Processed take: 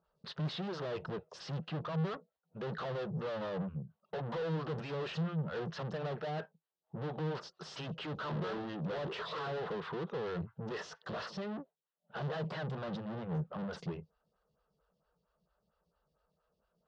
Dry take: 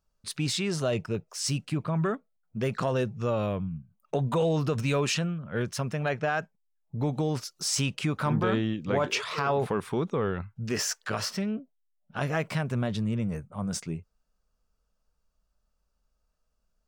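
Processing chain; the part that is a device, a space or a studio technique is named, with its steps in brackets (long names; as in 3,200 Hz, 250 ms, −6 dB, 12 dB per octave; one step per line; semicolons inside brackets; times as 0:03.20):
vibe pedal into a guitar amplifier (phaser with staggered stages 4.4 Hz; tube saturation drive 46 dB, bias 0.3; loudspeaker in its box 76–4,100 Hz, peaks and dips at 100 Hz −8 dB, 160 Hz +9 dB, 260 Hz −9 dB, 470 Hz +4 dB, 2,300 Hz −10 dB)
level +8.5 dB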